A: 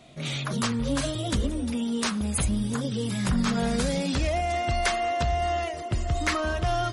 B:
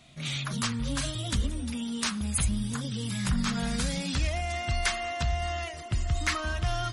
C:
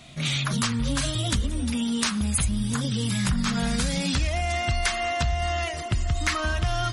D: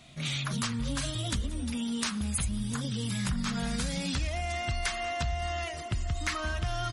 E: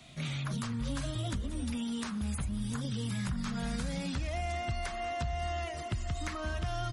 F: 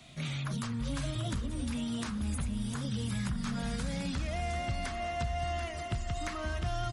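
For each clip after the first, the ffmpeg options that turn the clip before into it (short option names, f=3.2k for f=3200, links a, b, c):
-af "equalizer=f=460:w=0.72:g=-11.5"
-af "acompressor=threshold=-31dB:ratio=3,volume=8.5dB"
-af "aecho=1:1:188:0.0708,volume=-6.5dB"
-filter_complex "[0:a]acrossover=split=100|850|1800[a][b][c][d];[a]acompressor=threshold=-35dB:ratio=4[e];[b]acompressor=threshold=-34dB:ratio=4[f];[c]acompressor=threshold=-46dB:ratio=4[g];[d]acompressor=threshold=-46dB:ratio=4[h];[e][f][g][h]amix=inputs=4:normalize=0"
-af "aecho=1:1:738|1476|2214|2952:0.316|0.117|0.0433|0.016"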